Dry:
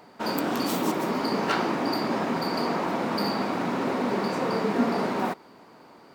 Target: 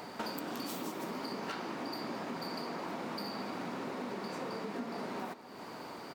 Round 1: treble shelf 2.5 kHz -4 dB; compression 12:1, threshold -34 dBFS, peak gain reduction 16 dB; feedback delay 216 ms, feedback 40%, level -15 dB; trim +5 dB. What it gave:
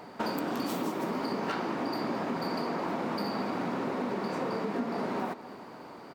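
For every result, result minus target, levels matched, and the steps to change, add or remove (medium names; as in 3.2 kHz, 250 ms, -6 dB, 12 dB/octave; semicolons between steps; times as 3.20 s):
compression: peak gain reduction -7.5 dB; 4 kHz band -5.0 dB
change: compression 12:1, threshold -42 dBFS, peak gain reduction 23 dB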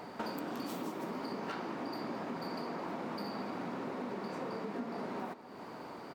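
4 kHz band -5.0 dB
change: treble shelf 2.5 kHz +4.5 dB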